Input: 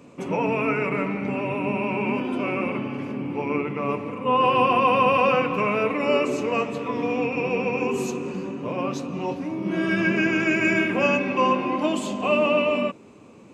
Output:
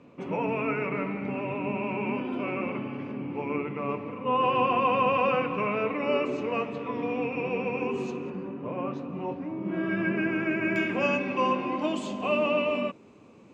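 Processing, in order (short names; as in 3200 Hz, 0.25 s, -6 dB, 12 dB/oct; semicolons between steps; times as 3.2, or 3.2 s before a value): LPF 3500 Hz 12 dB/oct, from 8.3 s 2000 Hz, from 10.76 s 6500 Hz; gain -5 dB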